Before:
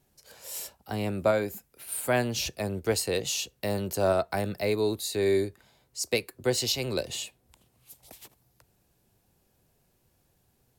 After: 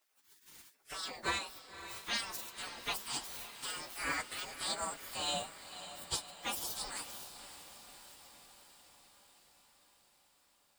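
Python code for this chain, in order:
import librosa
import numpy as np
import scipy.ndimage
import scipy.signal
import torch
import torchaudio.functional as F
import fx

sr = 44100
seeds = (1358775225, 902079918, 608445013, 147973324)

y = fx.partial_stretch(x, sr, pct=125)
y = fx.spec_gate(y, sr, threshold_db=-20, keep='weak')
y = fx.echo_diffused(y, sr, ms=552, feedback_pct=64, wet_db=-12.0)
y = y * librosa.db_to_amplitude(5.0)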